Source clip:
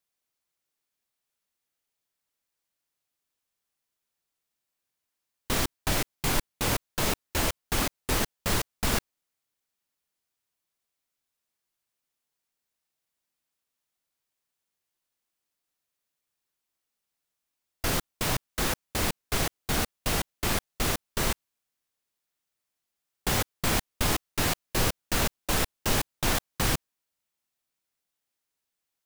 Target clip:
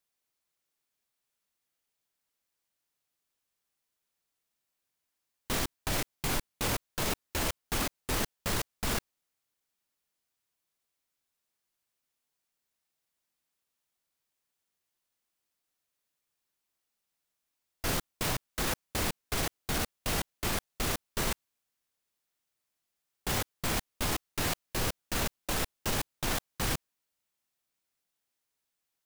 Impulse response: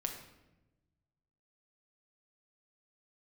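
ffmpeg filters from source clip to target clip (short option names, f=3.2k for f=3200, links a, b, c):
-af "alimiter=limit=-21dB:level=0:latency=1:release=15"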